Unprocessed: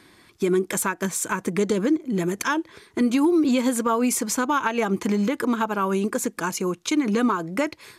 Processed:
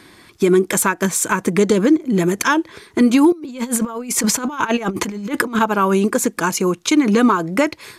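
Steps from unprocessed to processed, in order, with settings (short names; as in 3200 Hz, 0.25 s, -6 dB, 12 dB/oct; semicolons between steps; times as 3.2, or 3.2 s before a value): 3.32–5.59 negative-ratio compressor -28 dBFS, ratio -0.5; gain +7.5 dB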